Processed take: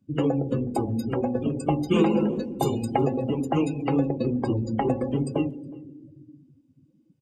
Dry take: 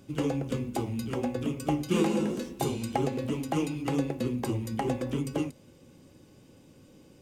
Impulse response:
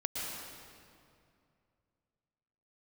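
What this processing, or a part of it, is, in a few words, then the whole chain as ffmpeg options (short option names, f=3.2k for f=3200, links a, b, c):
saturated reverb return: -filter_complex "[0:a]bandreject=f=60:t=h:w=6,bandreject=f=120:t=h:w=6,bandreject=f=180:t=h:w=6,bandreject=f=240:t=h:w=6,bandreject=f=300:t=h:w=6,asettb=1/sr,asplit=3[a][b][c];[a]atrim=end=3.794[d];[b]atrim=start=3.79:end=4.83,asetpts=PTS-STARTPTS,afade=t=in:d=0.004:c=qsin,afade=t=out:st=1.036:d=0.004:c=qsin,lowpass=f=7.3k:w=0.5412,lowpass=f=7.3k:w=1.3066[e];[c]atrim=start=4.826[f];[d][e]acrossfade=d=0.004:c1=hsin:c2=qsin[g];[g][f]acrossfade=d=0.004:c1=qsin:c2=hsin,asplit=2[h][i];[1:a]atrim=start_sample=2205[j];[i][j]afir=irnorm=-1:irlink=0,asoftclip=type=tanh:threshold=-28dB,volume=-10dB[k];[h][k]amix=inputs=2:normalize=0,afftdn=nr=32:nf=-37,asplit=2[l][m];[m]adelay=367.3,volume=-25dB,highshelf=f=4k:g=-8.27[n];[l][n]amix=inputs=2:normalize=0,volume=4.5dB"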